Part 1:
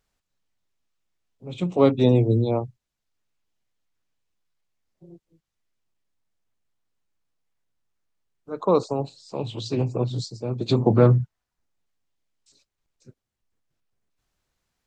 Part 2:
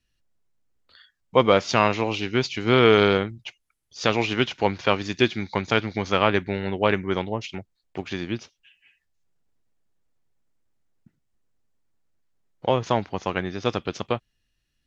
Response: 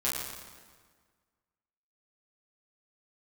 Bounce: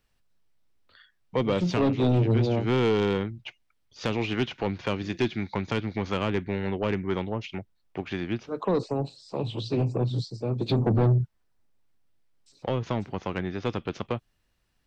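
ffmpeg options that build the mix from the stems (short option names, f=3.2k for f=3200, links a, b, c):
-filter_complex "[0:a]acrossover=split=4200[a][b];[b]acompressor=threshold=-51dB:ratio=4:attack=1:release=60[c];[a][c]amix=inputs=2:normalize=0,equalizer=f=6.8k:w=5.8:g=-7,volume=1dB,asplit=2[d][e];[1:a]bass=f=250:g=1,treble=f=4k:g=-12,volume=-0.5dB[f];[e]apad=whole_len=655689[g];[f][g]sidechaincompress=threshold=-20dB:ratio=8:attack=28:release=292[h];[d][h]amix=inputs=2:normalize=0,acrossover=split=420|3000[i][j][k];[j]acompressor=threshold=-30dB:ratio=4[l];[i][l][k]amix=inputs=3:normalize=0,asoftclip=type=tanh:threshold=-17dB"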